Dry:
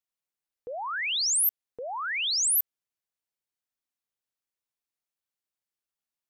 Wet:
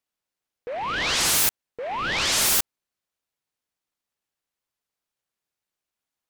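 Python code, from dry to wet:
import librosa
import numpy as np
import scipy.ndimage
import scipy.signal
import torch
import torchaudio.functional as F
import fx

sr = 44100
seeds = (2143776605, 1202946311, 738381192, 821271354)

y = fx.noise_mod_delay(x, sr, seeds[0], noise_hz=1300.0, depth_ms=0.064)
y = F.gain(torch.from_numpy(y), 5.0).numpy()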